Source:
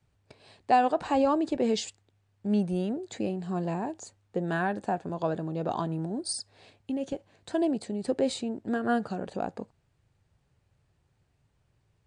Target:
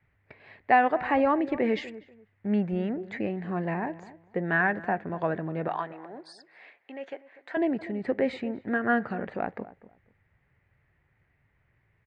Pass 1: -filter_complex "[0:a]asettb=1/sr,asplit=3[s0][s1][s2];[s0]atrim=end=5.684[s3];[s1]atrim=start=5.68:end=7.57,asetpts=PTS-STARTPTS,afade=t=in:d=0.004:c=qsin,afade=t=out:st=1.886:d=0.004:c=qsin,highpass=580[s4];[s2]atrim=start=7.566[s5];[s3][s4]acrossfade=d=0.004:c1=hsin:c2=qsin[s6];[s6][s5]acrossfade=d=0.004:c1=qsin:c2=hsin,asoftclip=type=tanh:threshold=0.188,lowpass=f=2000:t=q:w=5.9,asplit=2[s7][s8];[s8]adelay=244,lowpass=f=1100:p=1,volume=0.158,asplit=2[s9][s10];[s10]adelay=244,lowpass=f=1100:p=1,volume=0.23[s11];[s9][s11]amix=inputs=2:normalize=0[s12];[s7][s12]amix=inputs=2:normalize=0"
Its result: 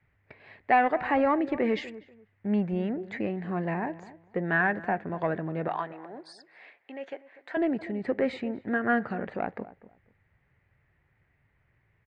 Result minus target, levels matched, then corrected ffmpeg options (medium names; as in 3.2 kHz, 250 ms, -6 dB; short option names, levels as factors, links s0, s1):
saturation: distortion +20 dB
-filter_complex "[0:a]asettb=1/sr,asplit=3[s0][s1][s2];[s0]atrim=end=5.684[s3];[s1]atrim=start=5.68:end=7.57,asetpts=PTS-STARTPTS,afade=t=in:d=0.004:c=qsin,afade=t=out:st=1.886:d=0.004:c=qsin,highpass=580[s4];[s2]atrim=start=7.566[s5];[s3][s4]acrossfade=d=0.004:c1=hsin:c2=qsin[s6];[s6][s5]acrossfade=d=0.004:c1=qsin:c2=hsin,asoftclip=type=tanh:threshold=0.668,lowpass=f=2000:t=q:w=5.9,asplit=2[s7][s8];[s8]adelay=244,lowpass=f=1100:p=1,volume=0.158,asplit=2[s9][s10];[s10]adelay=244,lowpass=f=1100:p=1,volume=0.23[s11];[s9][s11]amix=inputs=2:normalize=0[s12];[s7][s12]amix=inputs=2:normalize=0"